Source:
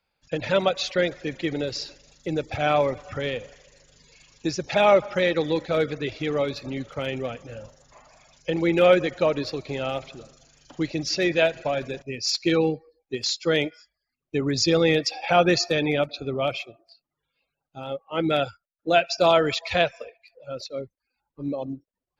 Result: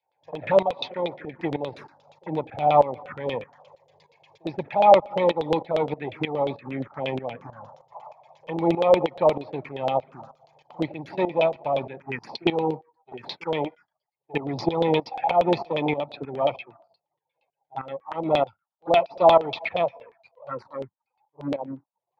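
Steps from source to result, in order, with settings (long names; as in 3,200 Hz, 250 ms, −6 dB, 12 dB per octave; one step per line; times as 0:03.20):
gain on one half-wave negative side −7 dB
high-pass filter 110 Hz 24 dB per octave
parametric band 880 Hz +14 dB 0.58 octaves
notch filter 2,800 Hz, Q 9.5
in parallel at 0 dB: downward compressor, threshold −28 dBFS, peak gain reduction 17.5 dB
on the sum: backwards echo 48 ms −21.5 dB
phaser swept by the level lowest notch 220 Hz, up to 1,600 Hz, full sweep at −19.5 dBFS
auto-filter low-pass saw down 8.5 Hz 510–3,400 Hz
shaped tremolo saw up 3.2 Hz, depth 80%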